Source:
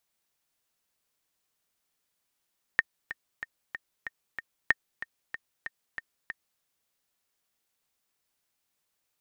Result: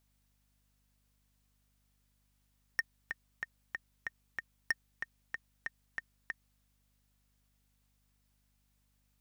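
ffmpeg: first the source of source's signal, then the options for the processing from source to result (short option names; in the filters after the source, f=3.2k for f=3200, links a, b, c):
-f lavfi -i "aevalsrc='pow(10,(-7.5-14.5*gte(mod(t,6*60/188),60/188))/20)*sin(2*PI*1830*mod(t,60/188))*exp(-6.91*mod(t,60/188)/0.03)':d=3.82:s=44100"
-af "asoftclip=type=tanh:threshold=-23dB,aeval=exprs='val(0)+0.0002*(sin(2*PI*50*n/s)+sin(2*PI*2*50*n/s)/2+sin(2*PI*3*50*n/s)/3+sin(2*PI*4*50*n/s)/4+sin(2*PI*5*50*n/s)/5)':c=same"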